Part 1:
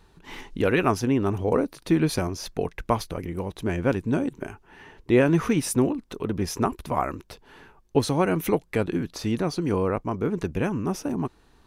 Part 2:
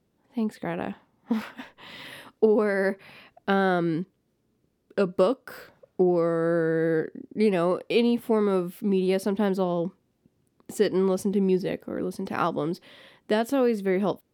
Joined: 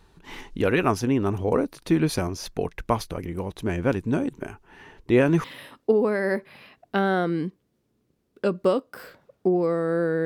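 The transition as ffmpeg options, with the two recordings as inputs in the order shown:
ffmpeg -i cue0.wav -i cue1.wav -filter_complex "[0:a]apad=whole_dur=10.25,atrim=end=10.25,atrim=end=5.442[link_01];[1:a]atrim=start=1.978:end=6.79[link_02];[link_01][link_02]acrossfade=duration=0.004:curve1=hsin:curve2=hsin" out.wav

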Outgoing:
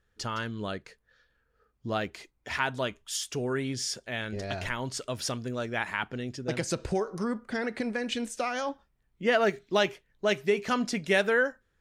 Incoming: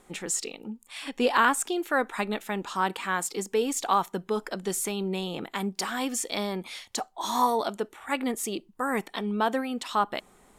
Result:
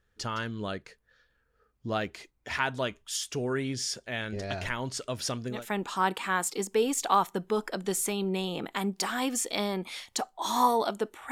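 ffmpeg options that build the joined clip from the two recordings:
ffmpeg -i cue0.wav -i cue1.wav -filter_complex "[0:a]apad=whole_dur=11.31,atrim=end=11.31,atrim=end=5.66,asetpts=PTS-STARTPTS[link_01];[1:a]atrim=start=2.27:end=8.1,asetpts=PTS-STARTPTS[link_02];[link_01][link_02]acrossfade=duration=0.18:curve1=tri:curve2=tri" out.wav

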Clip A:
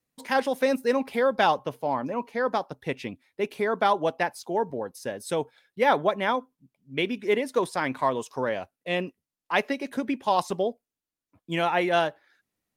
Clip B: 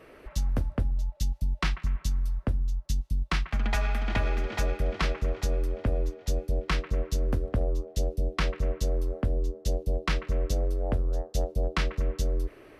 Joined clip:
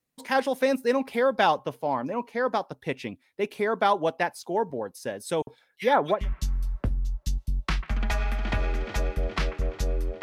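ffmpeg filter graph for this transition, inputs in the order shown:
ffmpeg -i cue0.wav -i cue1.wav -filter_complex "[0:a]asettb=1/sr,asplit=3[link_01][link_02][link_03];[link_01]atrim=end=5.424[link_04];[link_02]atrim=start=5.42:end=6.29,asetpts=PTS-STARTPTS,afade=type=in:duration=0.004:curve=qsin,afade=type=out:start_time=0.866:duration=0.004:curve=qsin,acrossover=split=2100[link_05][link_06];[link_05]adelay=50[link_07];[link_07][link_06]amix=inputs=2:normalize=0,atrim=end_sample=38367[link_08];[link_03]atrim=start=6.286[link_09];[link_04][link_08]acrossfade=duration=0.004:curve1=hsin:curve2=qsin[link_10];[link_10][link_09]acrossfade=duration=0.004:curve1=qsin:curve2=hsin,apad=whole_dur=10.22,atrim=end=10.22,atrim=end=6.29,asetpts=PTS-STARTPTS[link_11];[1:a]atrim=start=1.74:end=5.85,asetpts=PTS-STARTPTS[link_12];[link_11][link_12]acrossfade=duration=0.18:curve1=tri:curve2=tri" out.wav

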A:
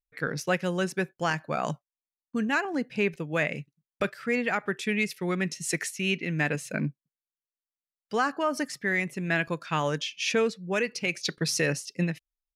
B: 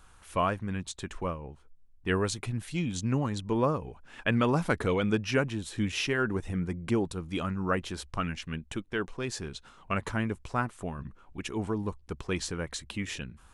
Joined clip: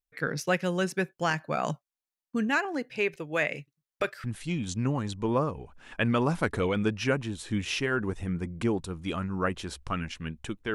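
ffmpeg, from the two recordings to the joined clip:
ffmpeg -i cue0.wav -i cue1.wav -filter_complex "[0:a]asettb=1/sr,asplit=3[link_01][link_02][link_03];[link_01]atrim=end=2.584[link_04];[link_02]atrim=start=2.58:end=4.24,asetpts=PTS-STARTPTS,afade=type=in:duration=0.004:curve=qsin,afade=type=out:start_time=1.656:duration=0.004:curve=qsin,equalizer=frequency=190:width_type=o:width=0.61:gain=-13[link_05];[link_03]atrim=start=4.236[link_06];[link_04][link_05]acrossfade=duration=0.004:curve1=hsin:curve2=qsin[link_07];[link_07][link_06]acrossfade=duration=0.004:curve1=qsin:curve2=hsin,apad=whole_dur=10.74,atrim=end=10.74,atrim=end=4.242[link_08];[1:a]atrim=start=2.508:end=9.01[link_09];[link_08][link_09]acrossfade=duration=0.004:curve1=hsin:curve2=hsin" out.wav

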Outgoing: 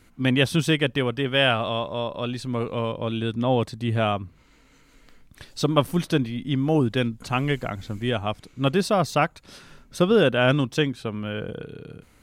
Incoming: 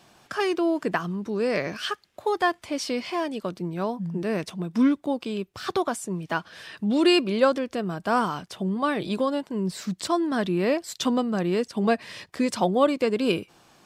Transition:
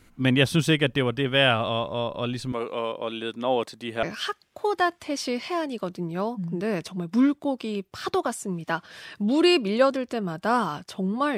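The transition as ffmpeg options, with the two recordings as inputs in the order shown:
ffmpeg -i cue0.wav -i cue1.wav -filter_complex "[0:a]asettb=1/sr,asplit=3[link_01][link_02][link_03];[link_01]atrim=end=2.524[link_04];[link_02]atrim=start=2.52:end=4.03,asetpts=PTS-STARTPTS,afade=type=in:duration=0.004:curve=qsin,afade=type=out:start_time=1.506:duration=0.004:curve=qsin,highpass=360[link_05];[link_03]atrim=start=4.026[link_06];[link_04][link_05]acrossfade=duration=0.004:curve1=hsin:curve2=qsin[link_07];[link_07][link_06]acrossfade=duration=0.004:curve1=qsin:curve2=hsin,apad=whole_dur=11.37,atrim=end=11.37,atrim=end=4.032[link_08];[1:a]atrim=start=1.648:end=8.99[link_09];[link_08][link_09]acrossfade=duration=0.004:curve1=hsin:curve2=hsin" out.wav

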